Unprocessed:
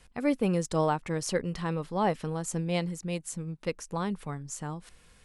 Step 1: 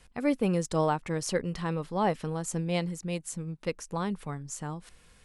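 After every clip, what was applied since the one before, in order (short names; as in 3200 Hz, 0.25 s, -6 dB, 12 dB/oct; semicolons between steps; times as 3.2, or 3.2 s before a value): nothing audible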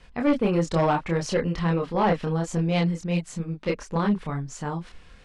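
LPF 4400 Hz 12 dB/oct; chorus voices 6, 1.1 Hz, delay 27 ms, depth 3 ms; in parallel at -9.5 dB: sine folder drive 8 dB, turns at -17 dBFS; on the sum: gain +3 dB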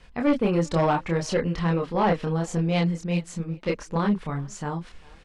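speakerphone echo 0.4 s, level -22 dB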